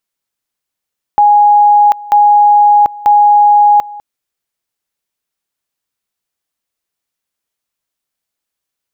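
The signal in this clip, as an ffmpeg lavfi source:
-f lavfi -i "aevalsrc='pow(10,(-3.5-21*gte(mod(t,0.94),0.74))/20)*sin(2*PI*828*t)':d=2.82:s=44100"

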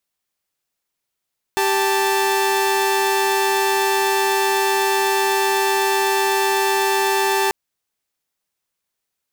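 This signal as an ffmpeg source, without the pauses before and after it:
-f lavfi -i "aevalsrc='0.15*((2*mod(392*t,1)-1)+(2*mod(880*t,1)-1))':d=5.94:s=44100"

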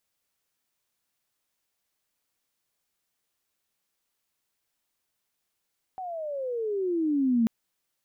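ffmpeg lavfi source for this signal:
-f lavfi -i "aevalsrc='pow(10,(-19+14*(t/1.49-1))/20)*sin(2*PI*765*1.49/(-21.5*log(2)/12)*(exp(-21.5*log(2)/12*t/1.49)-1))':d=1.49:s=44100"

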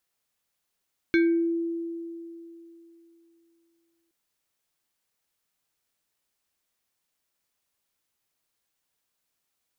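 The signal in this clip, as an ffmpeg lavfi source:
-f lavfi -i "aevalsrc='0.15*pow(10,-3*t/3.09)*sin(2*PI*335*t+0.86*pow(10,-3*t/0.46)*sin(2*PI*5.69*335*t))':d=2.97:s=44100"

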